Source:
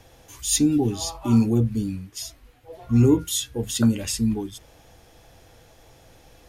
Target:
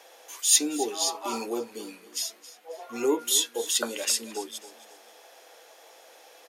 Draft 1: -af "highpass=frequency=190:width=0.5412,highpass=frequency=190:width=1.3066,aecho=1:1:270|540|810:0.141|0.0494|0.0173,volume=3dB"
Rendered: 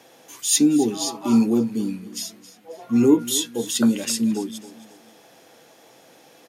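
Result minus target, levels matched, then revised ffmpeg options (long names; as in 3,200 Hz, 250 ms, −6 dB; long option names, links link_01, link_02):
250 Hz band +11.5 dB
-af "highpass=frequency=450:width=0.5412,highpass=frequency=450:width=1.3066,aecho=1:1:270|540|810:0.141|0.0494|0.0173,volume=3dB"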